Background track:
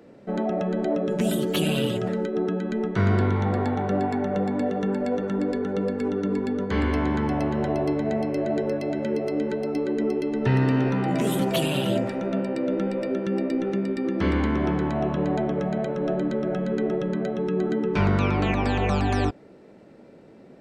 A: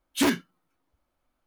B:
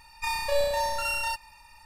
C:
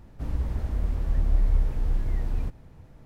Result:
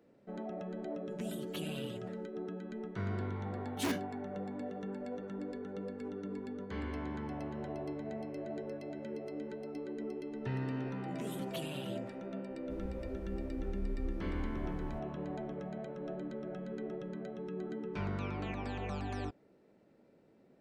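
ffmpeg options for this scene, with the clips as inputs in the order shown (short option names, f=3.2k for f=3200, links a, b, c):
-filter_complex "[0:a]volume=-16dB[a];[1:a]atrim=end=1.46,asetpts=PTS-STARTPTS,volume=-12dB,afade=t=in:d=0.004:c=hsin,afade=t=out:st=1.456:d=0.004:c=hsin,adelay=3620[b];[3:a]atrim=end=3.05,asetpts=PTS-STARTPTS,volume=-16.5dB,afade=t=in:d=0.004:c=hsin,afade=t=out:st=3.046:d=0.004:c=hsin,adelay=12500[c];[a][b][c]amix=inputs=3:normalize=0"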